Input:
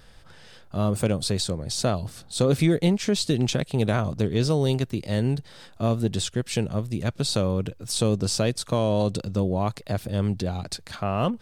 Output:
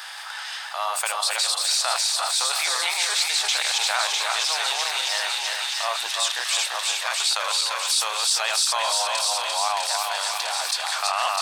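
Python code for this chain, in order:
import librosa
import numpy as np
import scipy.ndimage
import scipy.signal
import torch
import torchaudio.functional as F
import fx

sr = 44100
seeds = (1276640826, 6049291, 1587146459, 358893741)

p1 = fx.reverse_delay_fb(x, sr, ms=173, feedback_pct=61, wet_db=-1.5)
p2 = 10.0 ** (-15.0 / 20.0) * np.tanh(p1 / 10.0 ** (-15.0 / 20.0))
p3 = p1 + (p2 * librosa.db_to_amplitude(-4.0))
p4 = scipy.signal.sosfilt(scipy.signal.ellip(4, 1.0, 80, 810.0, 'highpass', fs=sr, output='sos'), p3)
p5 = fx.echo_wet_highpass(p4, sr, ms=652, feedback_pct=61, hz=1700.0, wet_db=-5.0)
y = fx.env_flatten(p5, sr, amount_pct=50)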